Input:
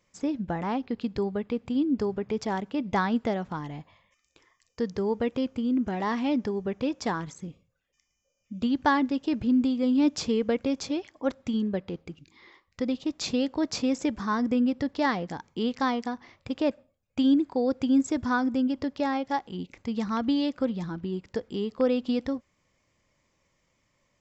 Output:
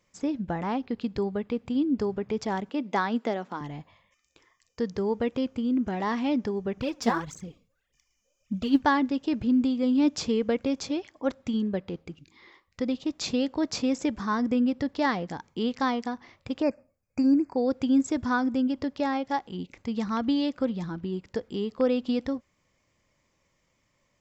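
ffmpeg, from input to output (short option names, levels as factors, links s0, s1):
-filter_complex "[0:a]asettb=1/sr,asplit=3[s0][s1][s2];[s0]atrim=end=2.694[s3];[s1]atrim=start=2.69:end=3.61,asetpts=PTS-STARTPTS,afade=t=in:d=0.004:c=qsin,afade=t=out:st=0.916:d=0.004:c=qsin,highpass=f=220:w=0.5412,highpass=f=220:w=1.3066[s4];[s2]atrim=start=3.606[s5];[s3][s4]acrossfade=d=0.004:c1=hsin:c2=qsin[s6];[s6][s5]acrossfade=d=0.004:c1=qsin:c2=hsin,asettb=1/sr,asplit=3[s7][s8][s9];[s7]atrim=end=6.774[s10];[s8]atrim=start=6.77:end=8.82,asetpts=PTS-STARTPTS,afade=t=in:d=0.004:c=qsin,afade=t=out:st=2.046:d=0.004:c=qsin,aphaser=in_gain=1:out_gain=1:delay=4.7:decay=0.68:speed=1.7:type=triangular[s11];[s9]atrim=start=8.816[s12];[s10][s11]acrossfade=d=0.004:c1=hsin:c2=qsin[s13];[s13][s12]acrossfade=d=0.004:c1=qsin:c2=hsin,asplit=3[s14][s15][s16];[s14]afade=t=out:st=16.61:d=0.02[s17];[s15]asuperstop=centerf=3400:order=12:qfactor=1.9,afade=t=in:st=16.61:d=0.02,afade=t=out:st=17.56:d=0.02[s18];[s16]afade=t=in:st=17.56:d=0.02[s19];[s17][s18][s19]amix=inputs=3:normalize=0"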